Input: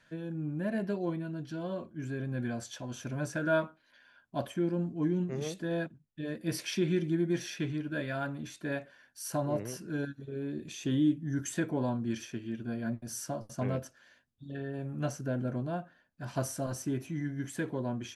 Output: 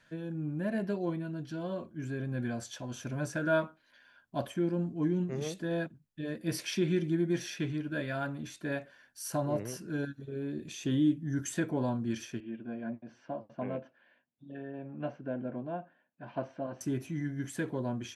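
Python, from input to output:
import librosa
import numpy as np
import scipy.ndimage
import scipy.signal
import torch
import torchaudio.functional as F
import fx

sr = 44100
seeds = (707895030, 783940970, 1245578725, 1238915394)

y = fx.cabinet(x, sr, low_hz=230.0, low_slope=12, high_hz=2600.0, hz=(410.0, 1300.0, 1900.0), db=(-4, -8, -5), at=(12.4, 16.81))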